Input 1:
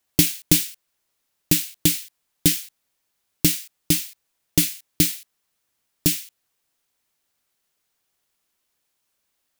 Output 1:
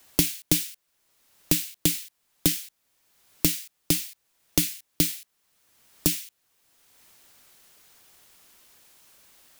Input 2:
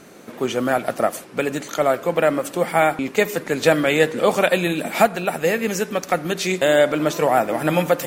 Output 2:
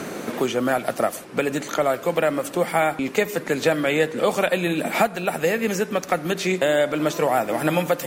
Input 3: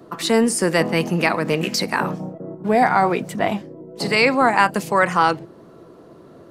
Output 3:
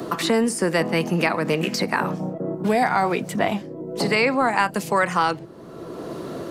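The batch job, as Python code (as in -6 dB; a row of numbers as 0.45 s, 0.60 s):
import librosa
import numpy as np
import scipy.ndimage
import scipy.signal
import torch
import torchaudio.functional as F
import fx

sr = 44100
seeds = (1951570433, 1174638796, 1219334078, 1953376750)

y = fx.band_squash(x, sr, depth_pct=70)
y = y * 10.0 ** (-3.0 / 20.0)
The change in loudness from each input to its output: -4.5 LU, -2.5 LU, -3.0 LU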